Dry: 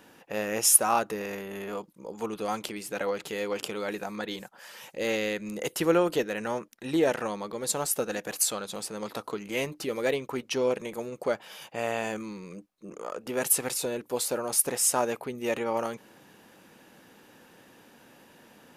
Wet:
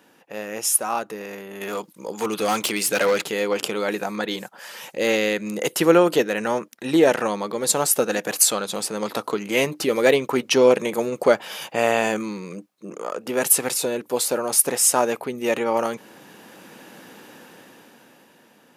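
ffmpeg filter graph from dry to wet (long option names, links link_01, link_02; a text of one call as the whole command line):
ffmpeg -i in.wav -filter_complex "[0:a]asettb=1/sr,asplit=3[link_01][link_02][link_03];[link_01]atrim=end=1.614[link_04];[link_02]atrim=start=1.61:end=3.24,asetpts=PTS-STARTPTS,afade=type=in:duration=0.004:curve=qsin,afade=type=out:start_time=1.626:duration=0.004:curve=qsin,tiltshelf=frequency=1400:gain=-4,acontrast=85,volume=23dB,asoftclip=hard,volume=-23dB[link_05];[link_03]atrim=start=3.236[link_06];[link_04][link_05]acrossfade=duration=0.004:curve1=hsin:curve2=qsin[link_07];[link_07][link_06]acrossfade=duration=0.004:curve1=qsin:curve2=hsin,highpass=140,dynaudnorm=framelen=180:gausssize=17:maxgain=16.5dB,volume=-1dB" out.wav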